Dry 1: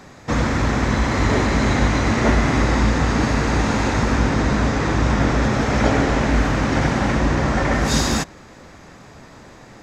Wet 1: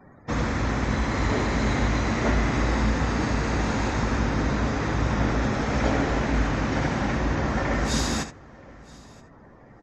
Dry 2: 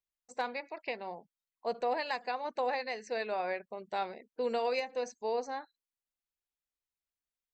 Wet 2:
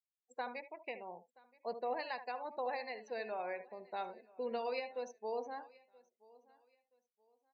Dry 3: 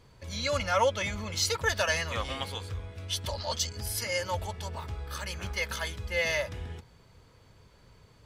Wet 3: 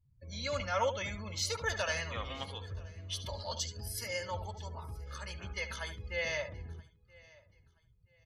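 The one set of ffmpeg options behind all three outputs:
-filter_complex "[0:a]asplit=2[s0][s1];[s1]aecho=0:1:74:0.299[s2];[s0][s2]amix=inputs=2:normalize=0,afftdn=nr=32:nf=-44,asplit=2[s3][s4];[s4]aecho=0:1:976|1952:0.0631|0.0177[s5];[s3][s5]amix=inputs=2:normalize=0,volume=0.473"

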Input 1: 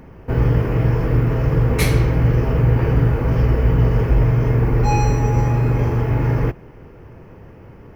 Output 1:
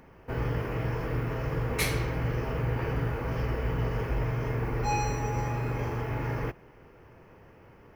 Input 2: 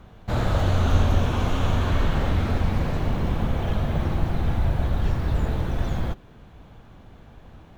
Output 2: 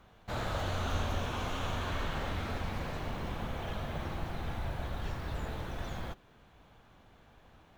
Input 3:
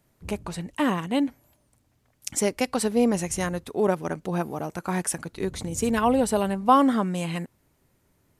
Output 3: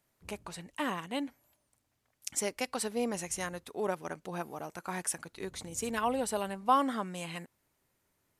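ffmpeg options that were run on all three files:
-af "lowshelf=f=450:g=-10,volume=0.531"

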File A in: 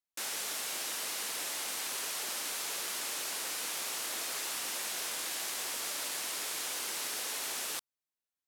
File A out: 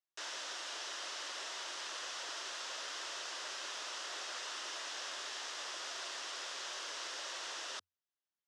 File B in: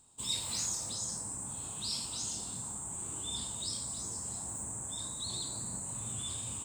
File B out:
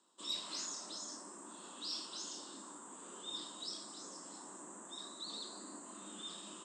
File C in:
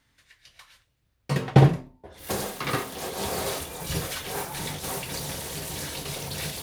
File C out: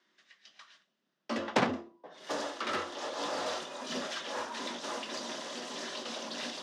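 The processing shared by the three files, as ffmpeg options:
-af "highpass=230,equalizer=f=370:t=q:w=4:g=-6,equalizer=f=710:t=q:w=4:g=-5,equalizer=f=2200:t=q:w=4:g=-8,equalizer=f=4200:t=q:w=4:g=-5,lowpass=f=5600:w=0.5412,lowpass=f=5600:w=1.3066,aeval=exprs='0.376*(cos(1*acos(clip(val(0)/0.376,-1,1)))-cos(1*PI/2))+0.168*(cos(7*acos(clip(val(0)/0.376,-1,1)))-cos(7*PI/2))+0.00668*(cos(8*acos(clip(val(0)/0.376,-1,1)))-cos(8*PI/2))':c=same,afreqshift=88,volume=0.447"

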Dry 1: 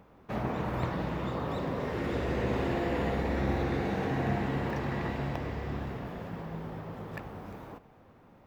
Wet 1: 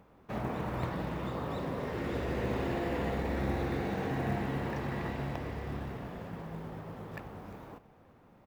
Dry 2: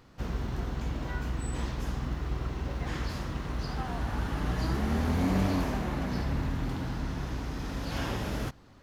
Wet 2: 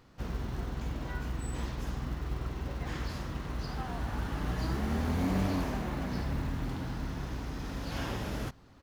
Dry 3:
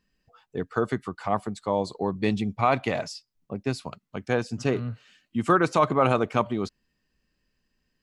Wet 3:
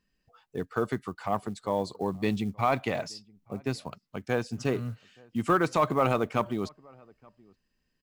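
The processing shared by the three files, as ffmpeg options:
-filter_complex "[0:a]acontrast=58,acrusher=bits=8:mode=log:mix=0:aa=0.000001,asplit=2[s0][s1];[s1]adelay=874.6,volume=0.0447,highshelf=f=4000:g=-19.7[s2];[s0][s2]amix=inputs=2:normalize=0,volume=0.355"

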